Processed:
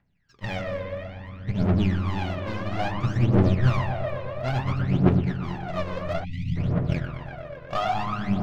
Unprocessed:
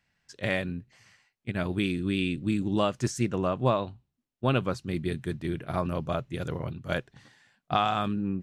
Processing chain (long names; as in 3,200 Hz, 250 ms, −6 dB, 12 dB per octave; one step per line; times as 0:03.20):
each half-wave held at its own peak
delay with a low-pass on its return 121 ms, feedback 82%, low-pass 2,700 Hz, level −5 dB
on a send at −9.5 dB: convolution reverb RT60 0.45 s, pre-delay 5 ms
on the sum: time-frequency box erased 0:06.24–0:06.56, 300–1,900 Hz
high-frequency loss of the air 210 metres
phase shifter 0.59 Hz, delay 2 ms, feedback 76%
level −8.5 dB